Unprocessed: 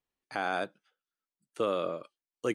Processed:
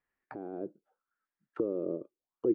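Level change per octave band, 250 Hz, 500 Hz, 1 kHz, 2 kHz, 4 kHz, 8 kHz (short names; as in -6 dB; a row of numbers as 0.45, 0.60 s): +4.5 dB, -1.5 dB, -16.0 dB, under -20 dB, under -30 dB, n/a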